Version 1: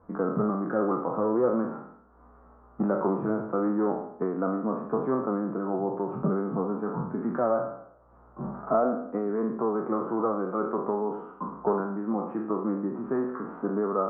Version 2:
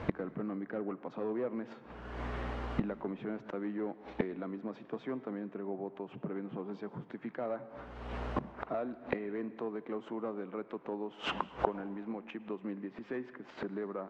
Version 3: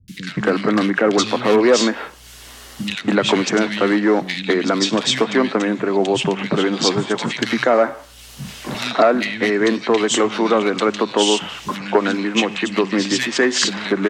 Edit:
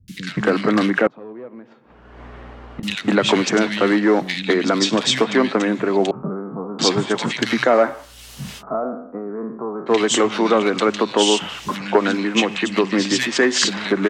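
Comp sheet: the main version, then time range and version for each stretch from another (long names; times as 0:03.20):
3
0:01.07–0:02.83: punch in from 2
0:06.11–0:06.79: punch in from 1
0:08.60–0:09.89: punch in from 1, crossfade 0.06 s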